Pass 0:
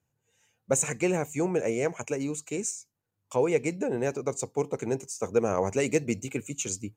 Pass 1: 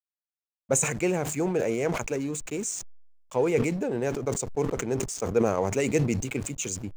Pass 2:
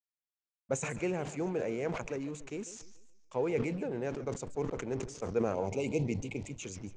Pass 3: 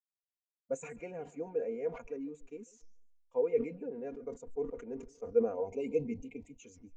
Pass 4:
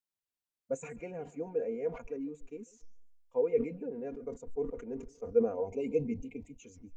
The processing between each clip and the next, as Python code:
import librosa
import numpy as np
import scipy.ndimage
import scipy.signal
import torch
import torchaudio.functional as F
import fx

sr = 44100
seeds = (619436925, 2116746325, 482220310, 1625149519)

y1 = fx.backlash(x, sr, play_db=-40.0)
y1 = fx.sustainer(y1, sr, db_per_s=49.0)
y2 = fx.spec_repair(y1, sr, seeds[0], start_s=5.57, length_s=0.92, low_hz=1000.0, high_hz=2100.0, source='after')
y2 = scipy.signal.sosfilt(scipy.signal.bessel(4, 4800.0, 'lowpass', norm='mag', fs=sr, output='sos'), y2)
y2 = fx.echo_warbled(y2, sr, ms=143, feedback_pct=38, rate_hz=2.8, cents=219, wet_db=-15.0)
y2 = y2 * 10.0 ** (-7.5 / 20.0)
y3 = fx.peak_eq(y2, sr, hz=190.0, db=-9.5, octaves=0.29)
y3 = y3 + 0.68 * np.pad(y3, (int(4.2 * sr / 1000.0), 0))[:len(y3)]
y3 = fx.spectral_expand(y3, sr, expansion=1.5)
y4 = fx.low_shelf(y3, sr, hz=240.0, db=5.5)